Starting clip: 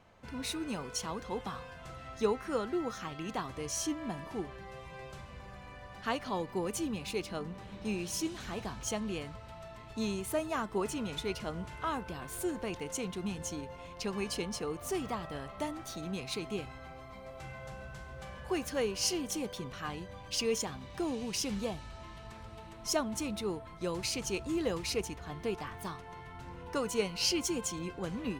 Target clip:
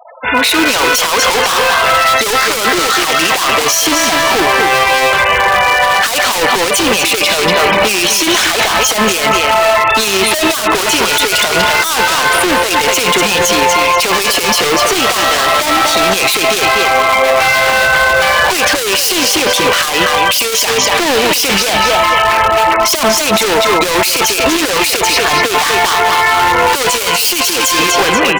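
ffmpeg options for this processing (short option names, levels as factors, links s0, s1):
-filter_complex "[0:a]acrossover=split=430 3500:gain=0.1 1 0.0794[s0][s1][s2];[s0][s1][s2]amix=inputs=3:normalize=0,afftfilt=real='re*gte(hypot(re,im),0.002)':imag='im*gte(hypot(re,im),0.002)':win_size=1024:overlap=0.75,dynaudnorm=f=150:g=7:m=4.73,aecho=1:1:240|480|720:0.299|0.0657|0.0144,volume=53.1,asoftclip=hard,volume=0.0188,crystalizer=i=5.5:c=0,alimiter=level_in=44.7:limit=0.891:release=50:level=0:latency=1,volume=0.891"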